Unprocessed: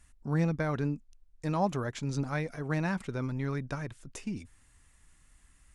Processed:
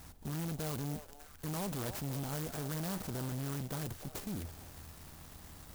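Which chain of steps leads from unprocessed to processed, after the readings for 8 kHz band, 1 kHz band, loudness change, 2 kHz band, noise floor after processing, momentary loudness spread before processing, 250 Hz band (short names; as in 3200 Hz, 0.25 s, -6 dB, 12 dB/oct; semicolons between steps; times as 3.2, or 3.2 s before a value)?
+5.0 dB, -9.0 dB, -6.0 dB, -10.0 dB, -54 dBFS, 10 LU, -7.0 dB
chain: per-bin compression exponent 0.6; bell 81 Hz +14 dB 0.33 oct; notch 550 Hz, Q 12; tube stage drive 34 dB, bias 0.55; high shelf 6000 Hz +6.5 dB; on a send: delay with a stepping band-pass 0.3 s, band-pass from 680 Hz, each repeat 1.4 oct, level -7.5 dB; on the sum: clock jitter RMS 0.13 ms; gain -1.5 dB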